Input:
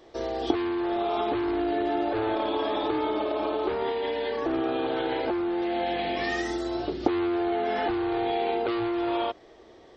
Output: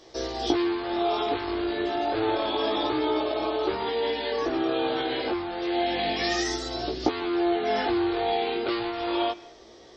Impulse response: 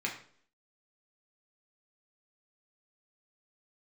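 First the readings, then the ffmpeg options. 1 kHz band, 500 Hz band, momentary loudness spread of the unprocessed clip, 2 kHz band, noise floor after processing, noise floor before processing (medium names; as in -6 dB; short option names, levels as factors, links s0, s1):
+0.5 dB, +0.5 dB, 2 LU, +2.0 dB, -49 dBFS, -52 dBFS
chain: -filter_complex "[0:a]equalizer=f=5400:t=o:w=1.1:g=12.5,flanger=delay=15.5:depth=6.8:speed=0.29,asplit=2[s0][s1];[1:a]atrim=start_sample=2205,adelay=136[s2];[s1][s2]afir=irnorm=-1:irlink=0,volume=0.0631[s3];[s0][s3]amix=inputs=2:normalize=0,volume=1.5"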